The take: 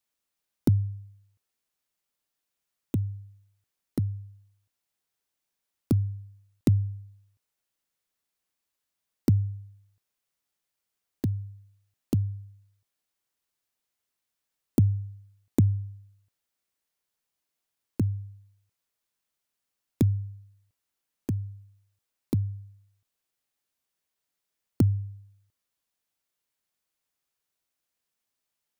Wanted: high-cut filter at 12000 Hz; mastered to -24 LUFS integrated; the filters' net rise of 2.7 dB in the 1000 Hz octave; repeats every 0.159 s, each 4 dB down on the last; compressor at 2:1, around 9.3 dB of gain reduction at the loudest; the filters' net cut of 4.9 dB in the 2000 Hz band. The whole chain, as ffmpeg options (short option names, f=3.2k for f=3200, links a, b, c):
-af "lowpass=12k,equalizer=f=1k:t=o:g=5.5,equalizer=f=2k:t=o:g=-8.5,acompressor=threshold=-34dB:ratio=2,aecho=1:1:159|318|477|636|795|954|1113|1272|1431:0.631|0.398|0.25|0.158|0.0994|0.0626|0.0394|0.0249|0.0157,volume=12dB"